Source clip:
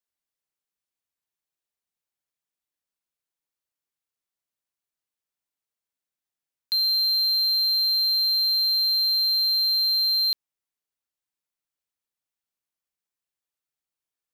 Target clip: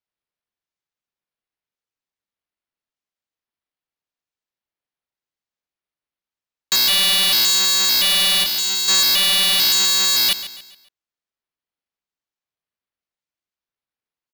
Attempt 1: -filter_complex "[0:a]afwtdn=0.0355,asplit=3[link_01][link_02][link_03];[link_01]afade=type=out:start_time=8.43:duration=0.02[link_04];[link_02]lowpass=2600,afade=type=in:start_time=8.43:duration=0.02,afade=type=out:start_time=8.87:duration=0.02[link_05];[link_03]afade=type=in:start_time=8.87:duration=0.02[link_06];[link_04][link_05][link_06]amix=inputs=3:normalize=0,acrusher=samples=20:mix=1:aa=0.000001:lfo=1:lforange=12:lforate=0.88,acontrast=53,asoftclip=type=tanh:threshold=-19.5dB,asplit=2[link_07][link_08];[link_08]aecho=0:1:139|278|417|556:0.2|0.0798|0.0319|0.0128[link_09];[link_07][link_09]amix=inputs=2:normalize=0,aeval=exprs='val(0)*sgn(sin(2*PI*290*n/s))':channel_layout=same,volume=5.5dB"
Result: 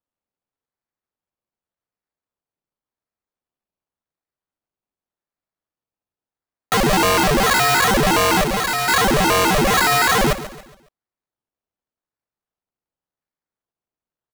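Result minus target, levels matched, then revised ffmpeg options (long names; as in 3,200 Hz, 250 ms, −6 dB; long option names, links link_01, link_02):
sample-and-hold swept by an LFO: distortion +13 dB
-filter_complex "[0:a]afwtdn=0.0355,asplit=3[link_01][link_02][link_03];[link_01]afade=type=out:start_time=8.43:duration=0.02[link_04];[link_02]lowpass=2600,afade=type=in:start_time=8.43:duration=0.02,afade=type=out:start_time=8.87:duration=0.02[link_05];[link_03]afade=type=in:start_time=8.87:duration=0.02[link_06];[link_04][link_05][link_06]amix=inputs=3:normalize=0,acrusher=samples=5:mix=1:aa=0.000001:lfo=1:lforange=3:lforate=0.88,acontrast=53,asoftclip=type=tanh:threshold=-19.5dB,asplit=2[link_07][link_08];[link_08]aecho=0:1:139|278|417|556:0.2|0.0798|0.0319|0.0128[link_09];[link_07][link_09]amix=inputs=2:normalize=0,aeval=exprs='val(0)*sgn(sin(2*PI*290*n/s))':channel_layout=same,volume=5.5dB"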